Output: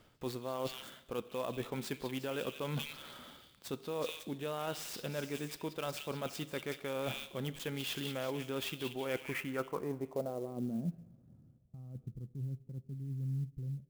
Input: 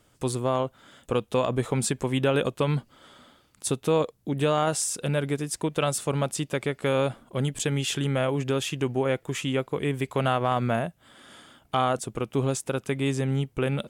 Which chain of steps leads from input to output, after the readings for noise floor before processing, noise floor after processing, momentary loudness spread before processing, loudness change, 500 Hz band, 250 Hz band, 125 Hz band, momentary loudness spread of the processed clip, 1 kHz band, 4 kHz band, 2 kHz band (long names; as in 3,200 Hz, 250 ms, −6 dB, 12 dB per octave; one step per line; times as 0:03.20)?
−64 dBFS, −65 dBFS, 5 LU, −12.5 dB, −13.0 dB, −12.0 dB, −13.0 dB, 9 LU, −15.5 dB, −9.0 dB, −10.5 dB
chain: fade-out on the ending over 0.91 s
dynamic equaliser 110 Hz, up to −7 dB, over −42 dBFS, Q 1.1
echo through a band-pass that steps 183 ms, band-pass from 3,300 Hz, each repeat 0.7 octaves, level −3.5 dB
reversed playback
downward compressor 10 to 1, threshold −35 dBFS, peak gain reduction 16.5 dB
reversed playback
low-pass filter sweep 5,700 Hz → 130 Hz, 0:08.71–0:11.17
parametric band 6,000 Hz −11.5 dB 0.7 octaves
coupled-rooms reverb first 0.81 s, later 2.8 s, from −18 dB, DRR 14 dB
converter with an unsteady clock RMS 0.022 ms